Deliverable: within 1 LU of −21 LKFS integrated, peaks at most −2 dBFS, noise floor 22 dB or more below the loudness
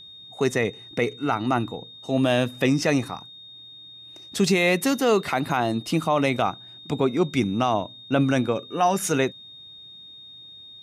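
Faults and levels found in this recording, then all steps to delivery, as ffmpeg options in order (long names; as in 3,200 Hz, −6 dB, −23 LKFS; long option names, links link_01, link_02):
interfering tone 3,700 Hz; level of the tone −42 dBFS; integrated loudness −23.5 LKFS; sample peak −10.0 dBFS; target loudness −21.0 LKFS
→ -af "bandreject=frequency=3700:width=30"
-af "volume=2.5dB"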